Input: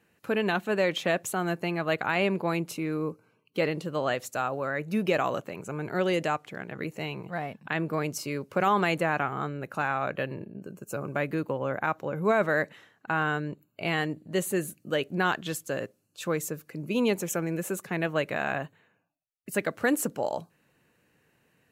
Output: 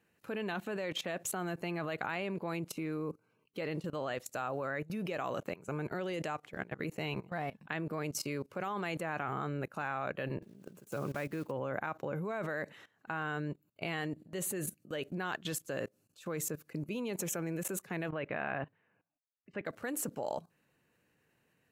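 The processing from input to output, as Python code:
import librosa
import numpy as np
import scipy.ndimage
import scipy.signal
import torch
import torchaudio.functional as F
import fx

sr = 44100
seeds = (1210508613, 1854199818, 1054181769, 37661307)

y = fx.block_float(x, sr, bits=5, at=(10.42, 11.5), fade=0.02)
y = fx.lowpass(y, sr, hz=2900.0, slope=24, at=(18.08, 19.65), fade=0.02)
y = fx.level_steps(y, sr, step_db=19)
y = y * librosa.db_to_amplitude(1.5)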